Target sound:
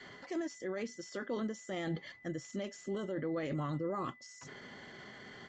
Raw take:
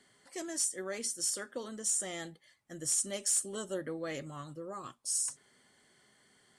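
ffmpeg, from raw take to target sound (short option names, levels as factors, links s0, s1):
-af "adynamicequalizer=threshold=0.002:dfrequency=240:dqfactor=0.85:tfrequency=240:tqfactor=0.85:attack=5:release=100:ratio=0.375:range=2:mode=boostabove:tftype=bell,areverse,acompressor=threshold=0.00447:ratio=8,areverse,alimiter=level_in=13.3:limit=0.0631:level=0:latency=1:release=16,volume=0.075,adynamicsmooth=sensitivity=3:basefreq=3900,aeval=exprs='val(0)+0.000178*sin(2*PI*2000*n/s)':c=same,atempo=1.2,aresample=16000,aresample=44100,volume=7.5"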